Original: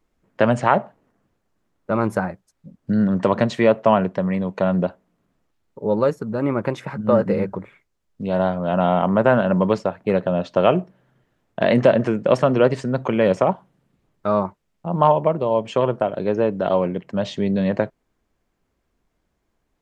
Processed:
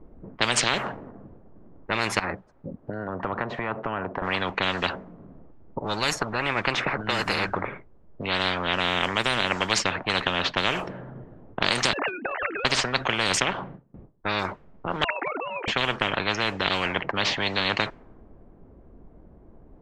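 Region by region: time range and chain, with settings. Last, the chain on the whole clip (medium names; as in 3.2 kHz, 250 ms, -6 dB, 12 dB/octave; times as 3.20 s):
2.19–4.22 s: compression 2:1, threshold -38 dBFS + bass shelf 430 Hz -7.5 dB
11.93–12.65 s: formants replaced by sine waves + high-pass 350 Hz 24 dB/octave + compression 4:1, threshold -23 dBFS
13.40–14.39 s: low-pass 4 kHz + gate with hold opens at -53 dBFS, closes at -58 dBFS
15.04–15.68 s: formants replaced by sine waves + high-pass 620 Hz
whole clip: level-controlled noise filter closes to 610 Hz, open at -13 dBFS; spectrum-flattening compressor 10:1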